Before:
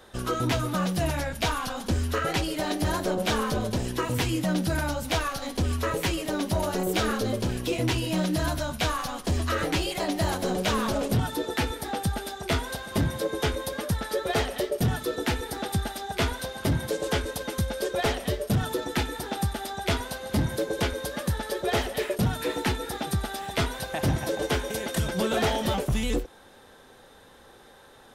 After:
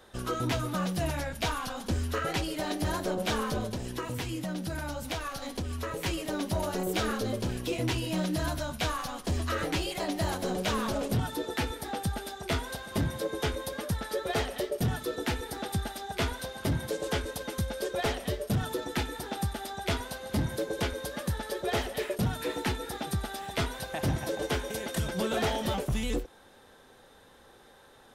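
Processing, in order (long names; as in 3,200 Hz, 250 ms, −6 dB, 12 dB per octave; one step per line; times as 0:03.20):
0:03.64–0:06.06: downward compressor, threshold −27 dBFS, peak gain reduction 6 dB
level −4 dB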